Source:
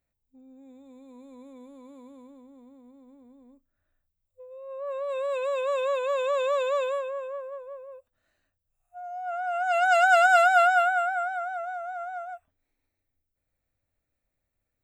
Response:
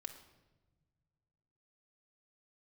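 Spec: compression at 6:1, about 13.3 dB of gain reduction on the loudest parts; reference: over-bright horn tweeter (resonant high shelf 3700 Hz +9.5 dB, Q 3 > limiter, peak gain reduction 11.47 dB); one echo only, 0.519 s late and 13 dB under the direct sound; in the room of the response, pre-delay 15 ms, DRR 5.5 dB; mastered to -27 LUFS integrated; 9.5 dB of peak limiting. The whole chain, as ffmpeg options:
-filter_complex "[0:a]acompressor=threshold=-30dB:ratio=6,alimiter=level_in=8.5dB:limit=-24dB:level=0:latency=1,volume=-8.5dB,aecho=1:1:519:0.224,asplit=2[a][b];[1:a]atrim=start_sample=2205,adelay=15[c];[b][c]afir=irnorm=-1:irlink=0,volume=-2dB[d];[a][d]amix=inputs=2:normalize=0,highshelf=f=3.7k:t=q:w=3:g=9.5,volume=19.5dB,alimiter=limit=-19.5dB:level=0:latency=1"

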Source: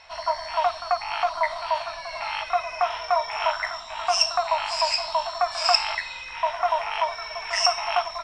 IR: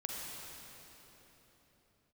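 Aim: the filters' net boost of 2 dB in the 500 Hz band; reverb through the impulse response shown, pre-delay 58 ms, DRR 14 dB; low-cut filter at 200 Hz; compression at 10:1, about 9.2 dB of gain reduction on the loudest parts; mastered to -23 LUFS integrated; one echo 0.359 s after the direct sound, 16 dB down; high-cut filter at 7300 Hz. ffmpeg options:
-filter_complex "[0:a]highpass=200,lowpass=7.3k,equalizer=f=500:t=o:g=3.5,acompressor=threshold=-24dB:ratio=10,aecho=1:1:359:0.158,asplit=2[a][b];[1:a]atrim=start_sample=2205,adelay=58[c];[b][c]afir=irnorm=-1:irlink=0,volume=-15.5dB[d];[a][d]amix=inputs=2:normalize=0,volume=6dB"

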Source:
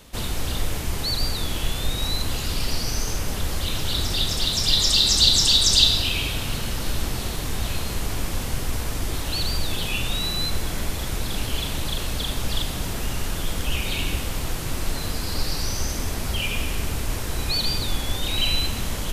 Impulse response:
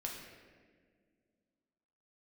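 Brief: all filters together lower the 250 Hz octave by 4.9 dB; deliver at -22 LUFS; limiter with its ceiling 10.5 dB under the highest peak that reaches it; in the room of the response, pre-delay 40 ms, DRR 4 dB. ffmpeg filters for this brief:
-filter_complex "[0:a]equalizer=f=250:t=o:g=-7,alimiter=limit=-12dB:level=0:latency=1,asplit=2[a][b];[1:a]atrim=start_sample=2205,adelay=40[c];[b][c]afir=irnorm=-1:irlink=0,volume=-4dB[d];[a][d]amix=inputs=2:normalize=0,volume=2.5dB"

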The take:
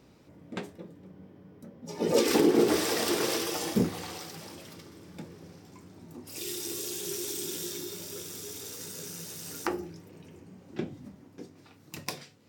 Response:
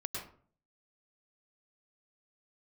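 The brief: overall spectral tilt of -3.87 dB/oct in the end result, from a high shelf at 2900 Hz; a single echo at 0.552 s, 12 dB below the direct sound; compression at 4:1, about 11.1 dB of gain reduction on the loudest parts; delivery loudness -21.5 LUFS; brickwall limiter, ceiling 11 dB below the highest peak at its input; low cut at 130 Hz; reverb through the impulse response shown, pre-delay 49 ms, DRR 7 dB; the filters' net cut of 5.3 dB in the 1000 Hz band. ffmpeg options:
-filter_complex "[0:a]highpass=130,equalizer=f=1k:t=o:g=-6,highshelf=f=2.9k:g=-7.5,acompressor=threshold=-33dB:ratio=4,alimiter=level_in=5.5dB:limit=-24dB:level=0:latency=1,volume=-5.5dB,aecho=1:1:552:0.251,asplit=2[a][b];[1:a]atrim=start_sample=2205,adelay=49[c];[b][c]afir=irnorm=-1:irlink=0,volume=-8dB[d];[a][d]amix=inputs=2:normalize=0,volume=20dB"

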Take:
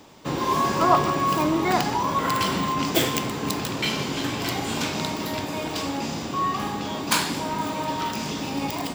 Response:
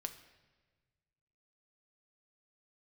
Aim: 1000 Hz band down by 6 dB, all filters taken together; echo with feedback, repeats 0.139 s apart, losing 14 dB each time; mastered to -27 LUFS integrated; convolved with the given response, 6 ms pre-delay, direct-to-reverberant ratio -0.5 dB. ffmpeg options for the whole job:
-filter_complex "[0:a]equalizer=f=1k:t=o:g=-7,aecho=1:1:139|278:0.2|0.0399,asplit=2[a][b];[1:a]atrim=start_sample=2205,adelay=6[c];[b][c]afir=irnorm=-1:irlink=0,volume=2.5dB[d];[a][d]amix=inputs=2:normalize=0,volume=-3.5dB"

